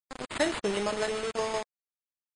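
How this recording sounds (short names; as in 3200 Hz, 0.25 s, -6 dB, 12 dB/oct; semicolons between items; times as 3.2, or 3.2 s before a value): aliases and images of a low sample rate 5800 Hz, jitter 0%; tremolo saw down 6.5 Hz, depth 55%; a quantiser's noise floor 6-bit, dither none; MP3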